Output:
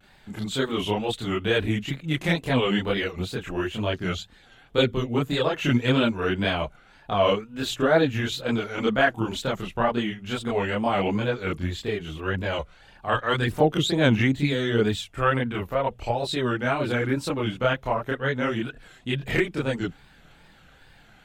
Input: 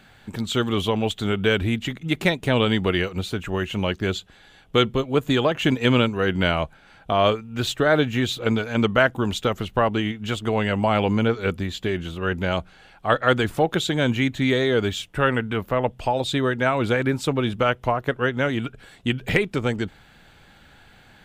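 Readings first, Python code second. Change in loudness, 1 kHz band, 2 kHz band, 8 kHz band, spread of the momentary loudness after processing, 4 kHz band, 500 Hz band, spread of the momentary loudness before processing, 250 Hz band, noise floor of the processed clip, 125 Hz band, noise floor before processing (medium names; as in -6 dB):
-2.5 dB, -2.5 dB, -2.5 dB, -3.0 dB, 9 LU, -3.0 dB, -2.5 dB, 7 LU, -2.5 dB, -54 dBFS, -2.5 dB, -52 dBFS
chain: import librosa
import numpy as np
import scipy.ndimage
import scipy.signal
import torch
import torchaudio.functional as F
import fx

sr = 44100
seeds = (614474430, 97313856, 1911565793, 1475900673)

y = fx.chorus_voices(x, sr, voices=4, hz=0.8, base_ms=28, depth_ms=4.1, mix_pct=60)
y = fx.wow_flutter(y, sr, seeds[0], rate_hz=2.1, depth_cents=130.0)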